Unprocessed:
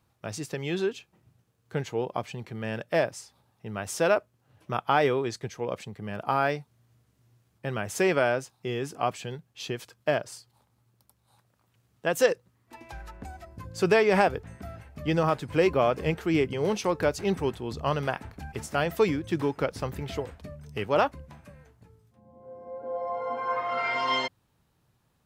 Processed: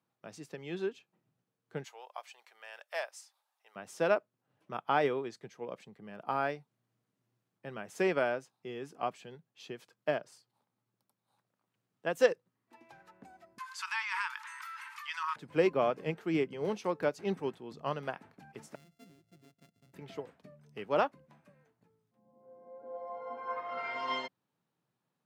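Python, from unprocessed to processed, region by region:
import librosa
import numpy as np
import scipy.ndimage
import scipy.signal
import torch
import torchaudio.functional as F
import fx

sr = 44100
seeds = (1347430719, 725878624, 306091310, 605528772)

y = fx.chain(x, sr, fx.highpass(hz=700.0, slope=24),
    fx.high_shelf(hz=4300.0, db=10.0), at=(1.84, 3.76))
y = fx.chain(y, sr, fx.brickwall_bandpass(low_hz=860.0, high_hz=13000.0),
    fx.env_flatten(amount_pct=70), at=(13.58, 15.36))
y = fx.chain(y, sr, fx.sample_sort(block=64),
    fx.tone_stack(knobs='10-0-1'), at=(18.75, 19.94))
y = scipy.signal.sosfilt(scipy.signal.butter(4, 150.0, 'highpass', fs=sr, output='sos'), y)
y = fx.high_shelf(y, sr, hz=4400.0, db=-6.5)
y = fx.upward_expand(y, sr, threshold_db=-33.0, expansion=1.5)
y = y * 10.0 ** (-2.5 / 20.0)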